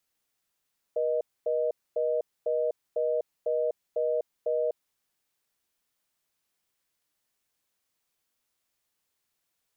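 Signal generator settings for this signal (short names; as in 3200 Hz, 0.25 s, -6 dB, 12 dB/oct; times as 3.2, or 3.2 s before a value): call progress tone reorder tone, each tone -27 dBFS 3.76 s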